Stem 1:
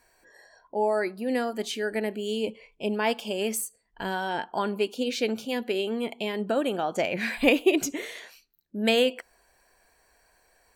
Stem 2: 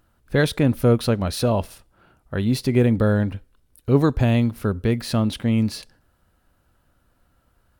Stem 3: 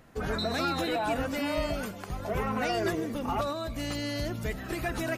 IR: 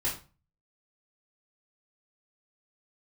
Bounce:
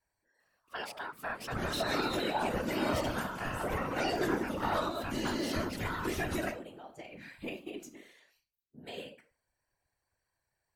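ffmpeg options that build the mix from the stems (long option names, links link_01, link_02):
-filter_complex "[0:a]volume=-17dB,asplit=2[link_01][link_02];[link_02]volume=-9dB[link_03];[1:a]lowshelf=frequency=380:gain=-11.5,aeval=exprs='val(0)*sin(2*PI*1200*n/s)':channel_layout=same,adelay=400,volume=-2.5dB[link_04];[2:a]highpass=62,adelay=1350,volume=1.5dB,asplit=2[link_05][link_06];[link_06]volume=-11dB[link_07];[link_01][link_04]amix=inputs=2:normalize=0,alimiter=limit=-22dB:level=0:latency=1:release=339,volume=0dB[link_08];[3:a]atrim=start_sample=2205[link_09];[link_03][link_07]amix=inputs=2:normalize=0[link_10];[link_10][link_09]afir=irnorm=-1:irlink=0[link_11];[link_05][link_08][link_11]amix=inputs=3:normalize=0,afftfilt=real='hypot(re,im)*cos(2*PI*random(0))':imag='hypot(re,im)*sin(2*PI*random(1))':win_size=512:overlap=0.75"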